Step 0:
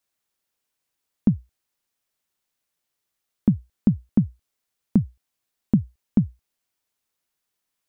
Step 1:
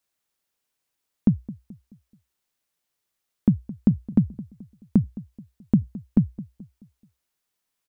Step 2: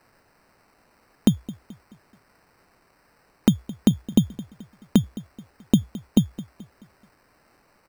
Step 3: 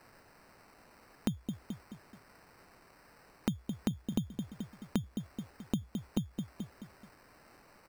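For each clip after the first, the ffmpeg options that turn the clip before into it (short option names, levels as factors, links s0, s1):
-filter_complex "[0:a]asplit=2[s0][s1];[s1]adelay=215,lowpass=f=1000:p=1,volume=0.133,asplit=2[s2][s3];[s3]adelay=215,lowpass=f=1000:p=1,volume=0.43,asplit=2[s4][s5];[s5]adelay=215,lowpass=f=1000:p=1,volume=0.43,asplit=2[s6][s7];[s7]adelay=215,lowpass=f=1000:p=1,volume=0.43[s8];[s0][s2][s4][s6][s8]amix=inputs=5:normalize=0"
-af "bass=f=250:g=-10,treble=f=4000:g=13,acrusher=samples=13:mix=1:aa=0.000001,volume=2.37"
-af "acompressor=threshold=0.0562:ratio=2,alimiter=limit=0.133:level=0:latency=1:release=418,volume=1.12"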